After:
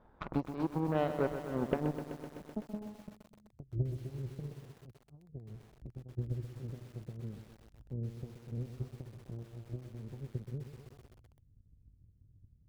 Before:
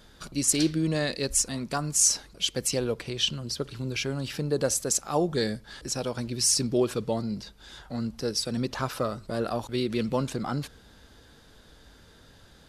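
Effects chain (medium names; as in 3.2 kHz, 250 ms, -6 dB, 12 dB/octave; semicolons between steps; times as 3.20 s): compression 6:1, threshold -38 dBFS, peak gain reduction 19 dB; 2.56–3.53 s: robot voice 211 Hz; low-pass sweep 940 Hz -> 110 Hz, 0.82–3.53 s; Chebyshev shaper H 7 -18 dB, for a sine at -25 dBFS; bit-crushed delay 127 ms, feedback 80%, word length 10-bit, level -10 dB; trim +8 dB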